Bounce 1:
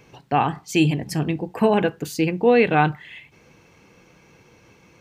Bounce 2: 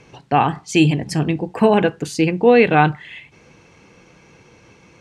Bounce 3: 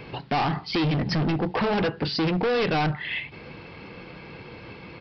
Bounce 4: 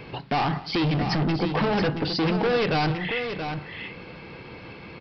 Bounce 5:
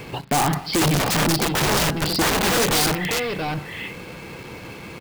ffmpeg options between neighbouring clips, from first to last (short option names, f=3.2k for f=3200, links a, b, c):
-af "lowpass=f=10k:w=0.5412,lowpass=f=10k:w=1.3066,volume=4dB"
-af "acompressor=threshold=-22dB:ratio=2.5,aresample=11025,asoftclip=type=hard:threshold=-28.5dB,aresample=44100,volume=7dB"
-af "aecho=1:1:190|678:0.106|0.422"
-filter_complex "[0:a]asplit=2[a][b];[b]acrusher=bits=6:mix=0:aa=0.000001,volume=-3.5dB[c];[a][c]amix=inputs=2:normalize=0,aeval=exprs='(mod(6.31*val(0)+1,2)-1)/6.31':c=same"